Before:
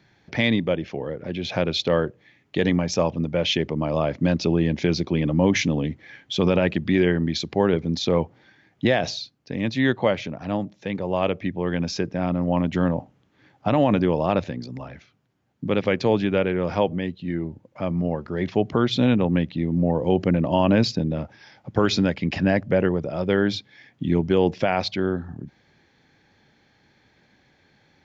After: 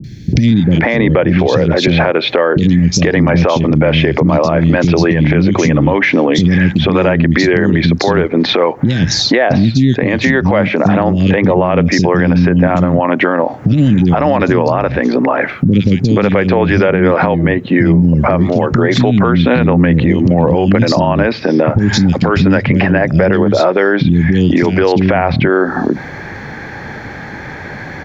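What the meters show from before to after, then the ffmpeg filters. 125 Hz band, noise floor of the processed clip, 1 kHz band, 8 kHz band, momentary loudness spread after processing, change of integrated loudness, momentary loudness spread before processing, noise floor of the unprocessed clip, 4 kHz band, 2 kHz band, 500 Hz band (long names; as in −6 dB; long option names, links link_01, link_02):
+14.0 dB, −27 dBFS, +12.5 dB, can't be measured, 3 LU, +12.0 dB, 11 LU, −62 dBFS, +9.5 dB, +14.5 dB, +11.0 dB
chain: -filter_complex "[0:a]highshelf=frequency=2400:width_type=q:width=1.5:gain=-7.5,acrossover=split=1300|3800[link_01][link_02][link_03];[link_01]acompressor=threshold=-26dB:ratio=4[link_04];[link_02]acompressor=threshold=-38dB:ratio=4[link_05];[link_03]acompressor=threshold=-45dB:ratio=4[link_06];[link_04][link_05][link_06]amix=inputs=3:normalize=0,acrossover=split=270|3500[link_07][link_08][link_09];[link_09]adelay=40[link_10];[link_08]adelay=480[link_11];[link_07][link_11][link_10]amix=inputs=3:normalize=0,acompressor=threshold=-40dB:ratio=6,alimiter=level_in=35.5dB:limit=-1dB:release=50:level=0:latency=1,volume=-1dB"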